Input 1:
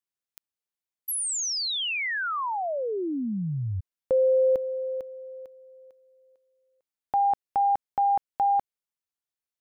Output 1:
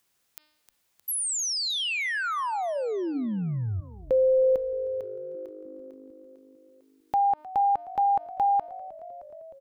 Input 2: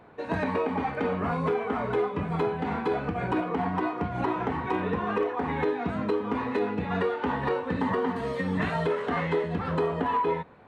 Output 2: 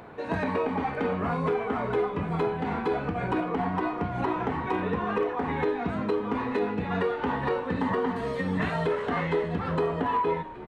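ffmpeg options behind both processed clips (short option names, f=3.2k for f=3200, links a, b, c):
-filter_complex "[0:a]bandreject=f=304.3:t=h:w=4,bandreject=f=608.6:t=h:w=4,bandreject=f=912.9:t=h:w=4,bandreject=f=1.2172k:t=h:w=4,bandreject=f=1.5215k:t=h:w=4,bandreject=f=1.8258k:t=h:w=4,bandreject=f=2.1301k:t=h:w=4,bandreject=f=2.4344k:t=h:w=4,bandreject=f=2.7387k:t=h:w=4,bandreject=f=3.043k:t=h:w=4,bandreject=f=3.3473k:t=h:w=4,bandreject=f=3.6516k:t=h:w=4,bandreject=f=3.9559k:t=h:w=4,bandreject=f=4.2602k:t=h:w=4,bandreject=f=4.5645k:t=h:w=4,bandreject=f=4.8688k:t=h:w=4,bandreject=f=5.1731k:t=h:w=4,asplit=6[a][b][c][d][e][f];[b]adelay=309,afreqshift=-51,volume=-22dB[g];[c]adelay=618,afreqshift=-102,volume=-25.9dB[h];[d]adelay=927,afreqshift=-153,volume=-29.8dB[i];[e]adelay=1236,afreqshift=-204,volume=-33.6dB[j];[f]adelay=1545,afreqshift=-255,volume=-37.5dB[k];[a][g][h][i][j][k]amix=inputs=6:normalize=0,acompressor=mode=upward:threshold=-28dB:ratio=1.5:attack=2:release=48:knee=2.83:detection=peak"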